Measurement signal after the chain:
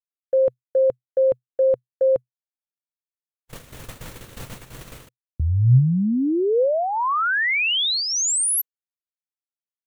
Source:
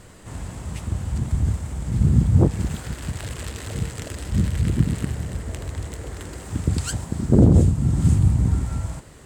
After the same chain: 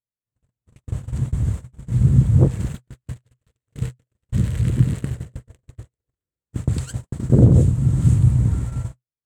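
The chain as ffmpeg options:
-af "agate=range=0.00141:threshold=0.0562:ratio=16:detection=peak,equalizer=f=125:t=o:w=0.33:g=10,equalizer=f=500:t=o:w=0.33:g=4,equalizer=f=800:t=o:w=0.33:g=-4,equalizer=f=5000:t=o:w=0.33:g=-5,volume=0.794"

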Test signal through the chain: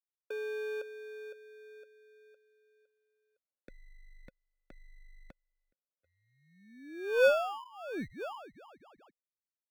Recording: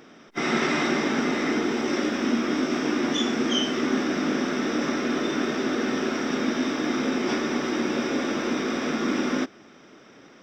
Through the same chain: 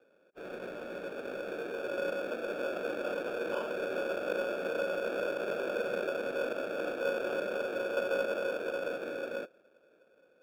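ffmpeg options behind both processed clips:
-filter_complex "[0:a]asplit=3[s0][s1][s2];[s0]bandpass=f=530:t=q:w=8,volume=1[s3];[s1]bandpass=f=1840:t=q:w=8,volume=0.501[s4];[s2]bandpass=f=2480:t=q:w=8,volume=0.355[s5];[s3][s4][s5]amix=inputs=3:normalize=0,acrossover=split=520|1400[s6][s7][s8];[s7]dynaudnorm=f=310:g=11:m=5.96[s9];[s6][s9][s8]amix=inputs=3:normalize=0,acrusher=samples=22:mix=1:aa=0.000001,aeval=exprs='0.224*(cos(1*acos(clip(val(0)/0.224,-1,1)))-cos(1*PI/2))+0.01*(cos(6*acos(clip(val(0)/0.224,-1,1)))-cos(6*PI/2))':c=same,acrossover=split=220 3100:gain=0.1 1 0.141[s10][s11][s12];[s10][s11][s12]amix=inputs=3:normalize=0,volume=0.708"

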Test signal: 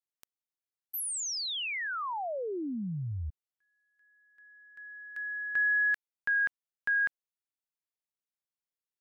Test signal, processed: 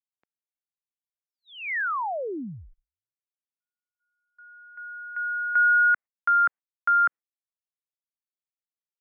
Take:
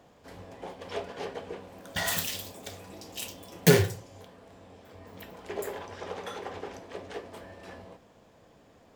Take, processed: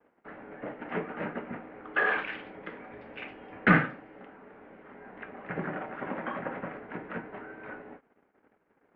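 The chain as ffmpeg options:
-af "tiltshelf=f=1100:g=-5,highpass=f=440:t=q:w=0.5412,highpass=f=440:t=q:w=1.307,lowpass=f=2300:t=q:w=0.5176,lowpass=f=2300:t=q:w=0.7071,lowpass=f=2300:t=q:w=1.932,afreqshift=-240,agate=range=0.0224:threshold=0.00126:ratio=3:release=60:detection=rms,volume=2"

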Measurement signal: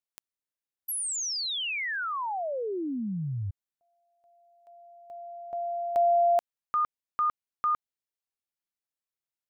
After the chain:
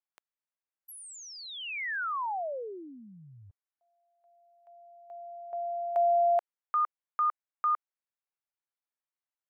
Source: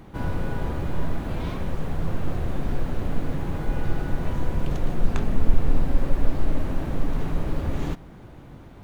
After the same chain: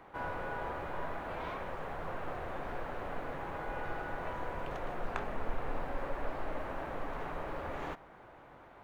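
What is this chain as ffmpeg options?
-filter_complex "[0:a]acrossover=split=500 2400:gain=0.1 1 0.178[s0][s1][s2];[s0][s1][s2]amix=inputs=3:normalize=0"

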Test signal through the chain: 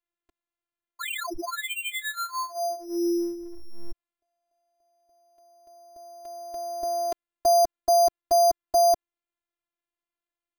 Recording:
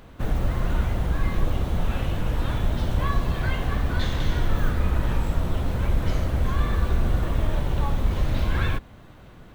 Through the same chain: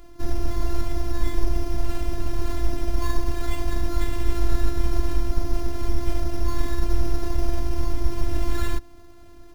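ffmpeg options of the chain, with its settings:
-af "lowshelf=f=480:g=8.5,acrusher=samples=8:mix=1:aa=0.000001,afftfilt=real='hypot(re,im)*cos(PI*b)':imag='0':win_size=512:overlap=0.75,volume=0.841"

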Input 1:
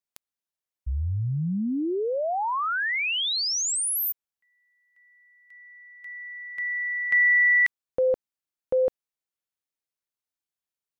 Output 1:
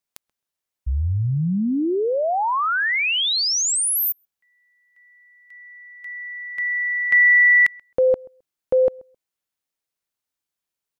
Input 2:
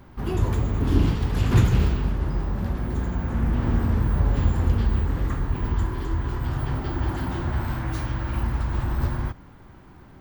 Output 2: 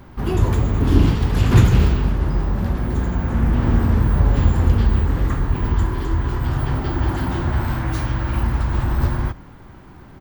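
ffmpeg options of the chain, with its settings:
-filter_complex "[0:a]asplit=2[s0][s1];[s1]adelay=132,lowpass=f=1500:p=1,volume=0.0631,asplit=2[s2][s3];[s3]adelay=132,lowpass=f=1500:p=1,volume=0.17[s4];[s0][s2][s4]amix=inputs=3:normalize=0,volume=1.88"

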